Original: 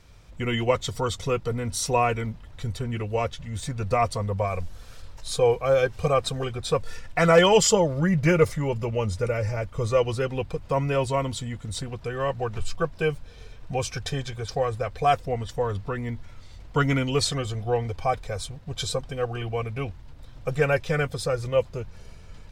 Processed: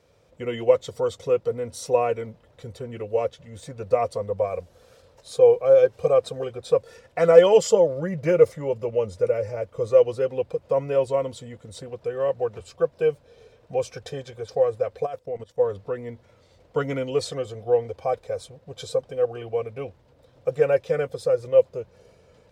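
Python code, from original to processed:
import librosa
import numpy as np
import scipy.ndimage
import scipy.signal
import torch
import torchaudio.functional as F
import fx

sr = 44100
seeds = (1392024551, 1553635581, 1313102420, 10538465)

y = scipy.signal.sosfilt(scipy.signal.butter(2, 93.0, 'highpass', fs=sr, output='sos'), x)
y = fx.level_steps(y, sr, step_db=16, at=(15.05, 15.58), fade=0.02)
y = fx.peak_eq(y, sr, hz=510.0, db=15.0, octaves=0.86)
y = y * 10.0 ** (-8.5 / 20.0)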